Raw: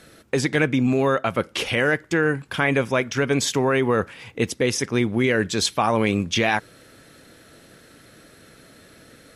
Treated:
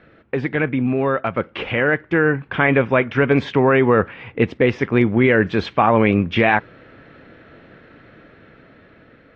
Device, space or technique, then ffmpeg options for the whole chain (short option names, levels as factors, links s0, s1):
action camera in a waterproof case: -af "lowpass=f=2600:w=0.5412,lowpass=f=2600:w=1.3066,dynaudnorm=f=810:g=5:m=2.99" -ar 24000 -c:a aac -b:a 48k